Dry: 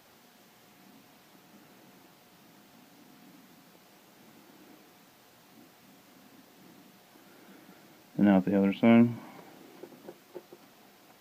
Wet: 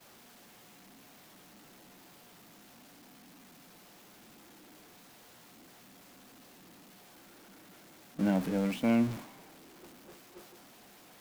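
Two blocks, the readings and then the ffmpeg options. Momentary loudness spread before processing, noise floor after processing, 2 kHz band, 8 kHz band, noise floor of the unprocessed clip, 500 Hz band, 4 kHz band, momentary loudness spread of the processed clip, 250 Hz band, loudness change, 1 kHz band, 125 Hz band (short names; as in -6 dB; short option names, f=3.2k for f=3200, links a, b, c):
15 LU, -57 dBFS, -5.0 dB, n/a, -59 dBFS, -6.0 dB, -1.0 dB, 13 LU, -6.0 dB, -6.0 dB, -5.5 dB, -5.0 dB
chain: -af "aeval=exprs='val(0)+0.5*0.0447*sgn(val(0))':c=same,agate=range=-33dB:threshold=-24dB:ratio=3:detection=peak,volume=-7.5dB"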